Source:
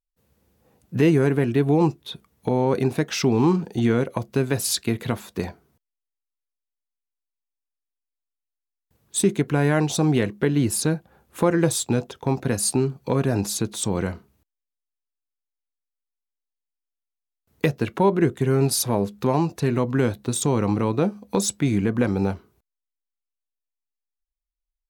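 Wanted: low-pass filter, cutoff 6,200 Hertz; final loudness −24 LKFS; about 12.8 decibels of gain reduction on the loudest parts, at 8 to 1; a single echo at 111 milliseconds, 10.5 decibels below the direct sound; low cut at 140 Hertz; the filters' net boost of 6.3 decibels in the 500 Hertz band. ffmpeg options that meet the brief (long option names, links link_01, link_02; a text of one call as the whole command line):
ffmpeg -i in.wav -af "highpass=140,lowpass=6200,equalizer=frequency=500:width_type=o:gain=8,acompressor=threshold=-24dB:ratio=8,aecho=1:1:111:0.299,volume=5.5dB" out.wav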